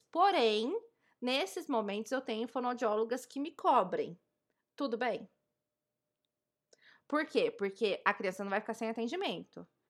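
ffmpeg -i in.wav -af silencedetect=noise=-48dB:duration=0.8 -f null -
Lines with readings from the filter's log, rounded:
silence_start: 5.25
silence_end: 6.73 | silence_duration: 1.49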